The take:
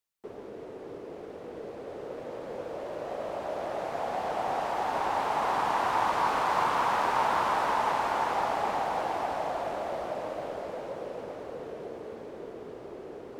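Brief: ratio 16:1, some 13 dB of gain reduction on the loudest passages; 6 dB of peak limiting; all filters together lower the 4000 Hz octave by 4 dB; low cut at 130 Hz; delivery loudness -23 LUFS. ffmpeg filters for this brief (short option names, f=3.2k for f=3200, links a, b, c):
-af "highpass=130,equalizer=f=4k:t=o:g=-5.5,acompressor=threshold=-36dB:ratio=16,volume=19.5dB,alimiter=limit=-13.5dB:level=0:latency=1"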